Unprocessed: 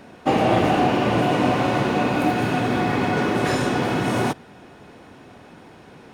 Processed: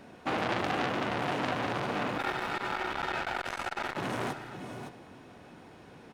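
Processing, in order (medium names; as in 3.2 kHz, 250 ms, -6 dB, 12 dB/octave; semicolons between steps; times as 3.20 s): 2.18–3.97 s: ring modulator 1.1 kHz; delay 563 ms -13 dB; reverberation RT60 2.5 s, pre-delay 56 ms, DRR 18.5 dB; transformer saturation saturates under 2.4 kHz; trim -6.5 dB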